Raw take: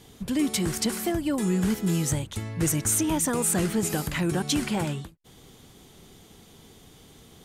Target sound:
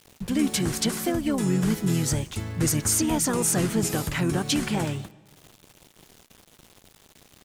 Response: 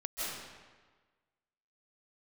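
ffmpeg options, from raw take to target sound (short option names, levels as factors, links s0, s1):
-filter_complex "[0:a]asplit=2[s0][s1];[s1]asetrate=33038,aresample=44100,atempo=1.33484,volume=0.501[s2];[s0][s2]amix=inputs=2:normalize=0,aeval=exprs='val(0)*gte(abs(val(0)),0.00562)':c=same,asplit=2[s3][s4];[1:a]atrim=start_sample=2205[s5];[s4][s5]afir=irnorm=-1:irlink=0,volume=0.0501[s6];[s3][s6]amix=inputs=2:normalize=0"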